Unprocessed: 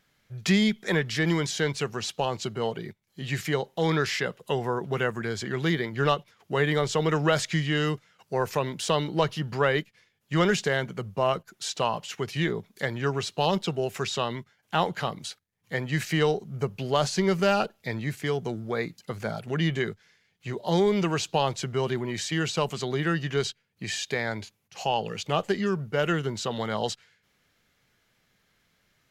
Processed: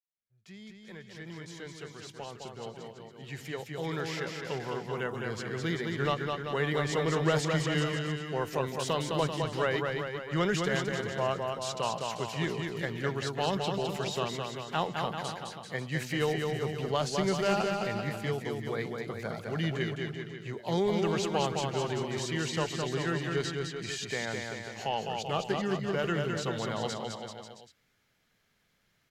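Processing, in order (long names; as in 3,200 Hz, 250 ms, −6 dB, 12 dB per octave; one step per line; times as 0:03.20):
fade in at the beginning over 6.46 s
bouncing-ball delay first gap 210 ms, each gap 0.85×, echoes 5
level −6 dB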